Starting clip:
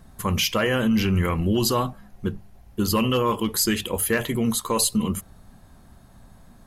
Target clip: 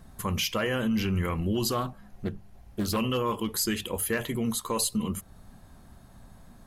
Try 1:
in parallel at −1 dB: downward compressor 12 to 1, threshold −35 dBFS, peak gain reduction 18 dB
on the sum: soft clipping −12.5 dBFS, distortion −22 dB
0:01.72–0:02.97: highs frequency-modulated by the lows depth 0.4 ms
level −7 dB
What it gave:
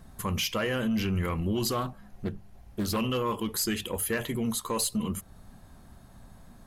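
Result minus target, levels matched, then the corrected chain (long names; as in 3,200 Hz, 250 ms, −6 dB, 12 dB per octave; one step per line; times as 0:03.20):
soft clipping: distortion +19 dB
in parallel at −1 dB: downward compressor 12 to 1, threshold −35 dBFS, peak gain reduction 18 dB
on the sum: soft clipping −2 dBFS, distortion −41 dB
0:01.72–0:02.97: highs frequency-modulated by the lows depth 0.4 ms
level −7 dB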